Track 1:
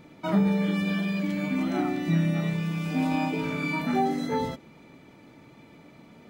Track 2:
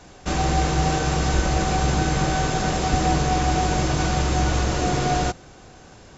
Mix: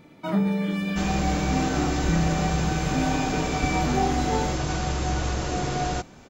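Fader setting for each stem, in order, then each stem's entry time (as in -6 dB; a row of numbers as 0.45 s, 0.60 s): -0.5 dB, -5.0 dB; 0.00 s, 0.70 s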